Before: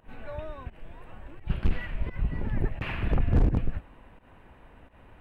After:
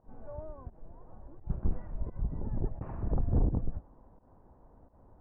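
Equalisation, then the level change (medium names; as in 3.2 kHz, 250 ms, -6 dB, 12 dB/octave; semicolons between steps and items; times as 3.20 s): low-pass 1 kHz 24 dB/octave; -5.0 dB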